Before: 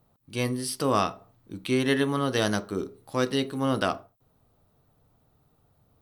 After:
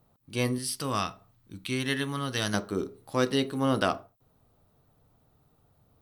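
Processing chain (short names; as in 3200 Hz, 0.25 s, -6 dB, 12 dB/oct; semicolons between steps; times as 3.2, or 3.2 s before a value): 0.58–2.54 bell 480 Hz -10 dB 2.4 oct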